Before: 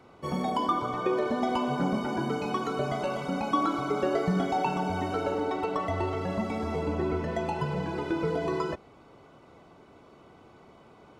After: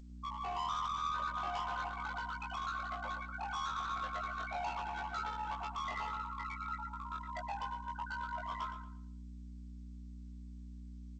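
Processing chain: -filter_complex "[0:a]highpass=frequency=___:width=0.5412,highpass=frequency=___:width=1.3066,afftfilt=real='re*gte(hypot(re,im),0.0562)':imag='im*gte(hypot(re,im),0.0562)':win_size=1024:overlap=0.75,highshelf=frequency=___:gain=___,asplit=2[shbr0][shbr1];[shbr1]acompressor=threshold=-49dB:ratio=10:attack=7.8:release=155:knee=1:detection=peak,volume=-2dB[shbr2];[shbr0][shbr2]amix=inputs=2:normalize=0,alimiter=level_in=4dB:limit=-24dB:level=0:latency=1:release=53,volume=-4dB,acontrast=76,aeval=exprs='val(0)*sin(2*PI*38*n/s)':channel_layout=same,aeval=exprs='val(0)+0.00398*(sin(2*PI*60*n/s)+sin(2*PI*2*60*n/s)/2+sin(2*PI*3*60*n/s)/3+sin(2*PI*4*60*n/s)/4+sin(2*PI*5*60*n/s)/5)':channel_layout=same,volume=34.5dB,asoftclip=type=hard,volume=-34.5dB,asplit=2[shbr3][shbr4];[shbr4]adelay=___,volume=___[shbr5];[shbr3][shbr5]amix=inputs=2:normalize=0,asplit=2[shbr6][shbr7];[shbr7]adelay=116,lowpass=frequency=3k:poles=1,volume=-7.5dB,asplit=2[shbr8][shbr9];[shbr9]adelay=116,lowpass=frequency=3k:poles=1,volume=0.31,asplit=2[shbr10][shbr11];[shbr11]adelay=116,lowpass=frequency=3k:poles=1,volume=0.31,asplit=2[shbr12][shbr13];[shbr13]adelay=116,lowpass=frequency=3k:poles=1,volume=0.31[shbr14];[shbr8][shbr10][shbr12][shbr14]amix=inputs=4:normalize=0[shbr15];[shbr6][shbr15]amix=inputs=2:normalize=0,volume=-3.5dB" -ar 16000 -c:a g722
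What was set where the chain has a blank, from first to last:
960, 960, 4.4k, -9.5, 21, -2.5dB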